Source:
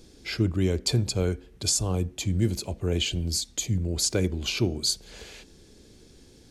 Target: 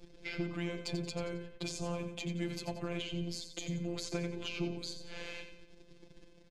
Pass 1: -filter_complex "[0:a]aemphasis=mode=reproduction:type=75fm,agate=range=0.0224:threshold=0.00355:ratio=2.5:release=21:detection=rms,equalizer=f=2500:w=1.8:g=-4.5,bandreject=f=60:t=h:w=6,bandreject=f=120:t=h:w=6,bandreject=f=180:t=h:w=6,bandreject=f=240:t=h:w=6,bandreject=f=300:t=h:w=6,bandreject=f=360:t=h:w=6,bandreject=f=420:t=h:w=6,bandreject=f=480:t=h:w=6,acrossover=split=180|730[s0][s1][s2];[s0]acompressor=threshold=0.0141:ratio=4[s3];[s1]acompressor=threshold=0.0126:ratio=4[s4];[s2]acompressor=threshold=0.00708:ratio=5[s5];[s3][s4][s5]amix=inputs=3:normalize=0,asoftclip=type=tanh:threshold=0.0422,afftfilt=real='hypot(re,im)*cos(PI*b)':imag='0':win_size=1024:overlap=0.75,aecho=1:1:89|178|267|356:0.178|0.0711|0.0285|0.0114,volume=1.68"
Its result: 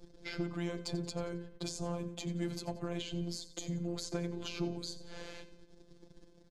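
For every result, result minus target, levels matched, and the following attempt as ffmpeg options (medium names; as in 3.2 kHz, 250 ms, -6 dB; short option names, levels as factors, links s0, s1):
2 kHz band -4.0 dB; echo-to-direct -6 dB
-filter_complex "[0:a]aemphasis=mode=reproduction:type=75fm,agate=range=0.0224:threshold=0.00355:ratio=2.5:release=21:detection=rms,equalizer=f=2500:w=1.8:g=6.5,bandreject=f=60:t=h:w=6,bandreject=f=120:t=h:w=6,bandreject=f=180:t=h:w=6,bandreject=f=240:t=h:w=6,bandreject=f=300:t=h:w=6,bandreject=f=360:t=h:w=6,bandreject=f=420:t=h:w=6,bandreject=f=480:t=h:w=6,acrossover=split=180|730[s0][s1][s2];[s0]acompressor=threshold=0.0141:ratio=4[s3];[s1]acompressor=threshold=0.0126:ratio=4[s4];[s2]acompressor=threshold=0.00708:ratio=5[s5];[s3][s4][s5]amix=inputs=3:normalize=0,asoftclip=type=tanh:threshold=0.0422,afftfilt=real='hypot(re,im)*cos(PI*b)':imag='0':win_size=1024:overlap=0.75,aecho=1:1:89|178|267|356:0.178|0.0711|0.0285|0.0114,volume=1.68"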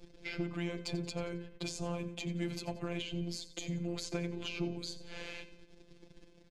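echo-to-direct -6 dB
-filter_complex "[0:a]aemphasis=mode=reproduction:type=75fm,agate=range=0.0224:threshold=0.00355:ratio=2.5:release=21:detection=rms,equalizer=f=2500:w=1.8:g=6.5,bandreject=f=60:t=h:w=6,bandreject=f=120:t=h:w=6,bandreject=f=180:t=h:w=6,bandreject=f=240:t=h:w=6,bandreject=f=300:t=h:w=6,bandreject=f=360:t=h:w=6,bandreject=f=420:t=h:w=6,bandreject=f=480:t=h:w=6,acrossover=split=180|730[s0][s1][s2];[s0]acompressor=threshold=0.0141:ratio=4[s3];[s1]acompressor=threshold=0.0126:ratio=4[s4];[s2]acompressor=threshold=0.00708:ratio=5[s5];[s3][s4][s5]amix=inputs=3:normalize=0,asoftclip=type=tanh:threshold=0.0422,afftfilt=real='hypot(re,im)*cos(PI*b)':imag='0':win_size=1024:overlap=0.75,aecho=1:1:89|178|267|356:0.355|0.142|0.0568|0.0227,volume=1.68"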